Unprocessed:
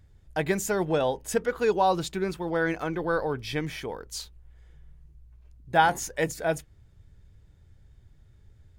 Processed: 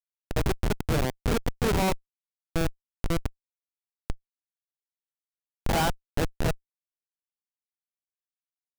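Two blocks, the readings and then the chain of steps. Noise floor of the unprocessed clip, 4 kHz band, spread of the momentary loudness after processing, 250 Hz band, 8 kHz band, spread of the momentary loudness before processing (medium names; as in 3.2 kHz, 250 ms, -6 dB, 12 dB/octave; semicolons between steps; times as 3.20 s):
-57 dBFS, +0.5 dB, 15 LU, 0.0 dB, -3.0 dB, 12 LU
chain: reverse spectral sustain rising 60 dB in 0.73 s; Schmitt trigger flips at -18 dBFS; trim +4 dB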